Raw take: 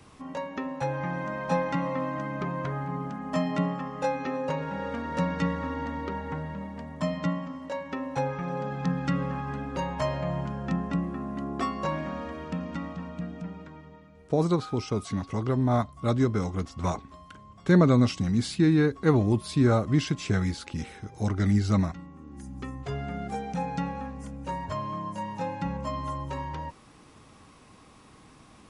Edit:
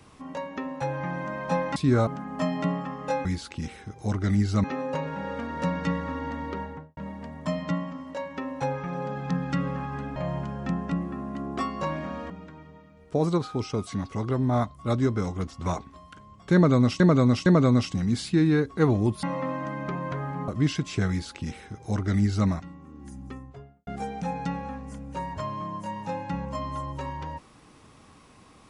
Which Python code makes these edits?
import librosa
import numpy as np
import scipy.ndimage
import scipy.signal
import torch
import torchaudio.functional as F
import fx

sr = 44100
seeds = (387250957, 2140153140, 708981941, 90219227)

y = fx.studio_fade_out(x, sr, start_s=6.13, length_s=0.39)
y = fx.studio_fade_out(y, sr, start_s=22.39, length_s=0.8)
y = fx.edit(y, sr, fx.swap(start_s=1.76, length_s=1.25, other_s=19.49, other_length_s=0.31),
    fx.cut(start_s=9.71, length_s=0.47),
    fx.cut(start_s=12.32, length_s=1.16),
    fx.repeat(start_s=17.72, length_s=0.46, count=3),
    fx.duplicate(start_s=20.41, length_s=1.39, to_s=4.19), tone=tone)